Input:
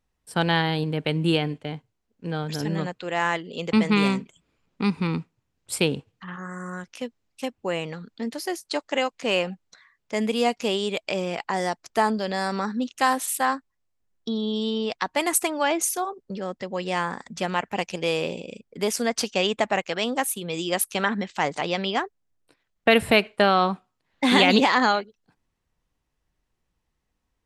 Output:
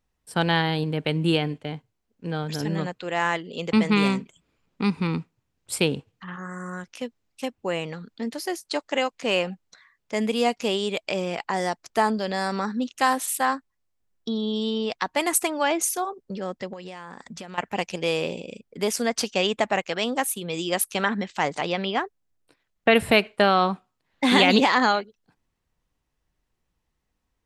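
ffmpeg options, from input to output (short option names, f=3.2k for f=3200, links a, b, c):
-filter_complex "[0:a]asettb=1/sr,asplit=3[a][b][c];[a]atrim=end=16.734[d];[b]atrim=start=16.73:end=17.58,asetpts=PTS-STARTPTS,afade=t=in:d=0.004:c=qsin,afade=t=out:st=0.846:d=0.004:c=qsin,acompressor=threshold=-34dB:ratio=8:attack=3.2:release=140:knee=1:detection=peak[e];[c]atrim=start=17.576[f];[d][e]acrossfade=d=0.004:c1=hsin:c2=qsin[g];[g][f]acrossfade=d=0.004:c1=qsin:c2=hsin,asettb=1/sr,asplit=3[h][i][j];[h]atrim=end=21.724[k];[i]atrim=start=21.72:end=22.95,asetpts=PTS-STARTPTS,afade=t=in:d=0.004:c=qsin,afade=t=out:st=1.226:d=0.004:c=qsin,acrossover=split=4100[l][m];[m]acompressor=threshold=-49dB:ratio=4:attack=1:release=60[n];[l][n]amix=inputs=2:normalize=0[o];[j]atrim=start=22.946[p];[k][o]acrossfade=d=0.004:c1=hsin:c2=qsin[q];[q][p]acrossfade=d=0.004:c1=qsin:c2=hsin"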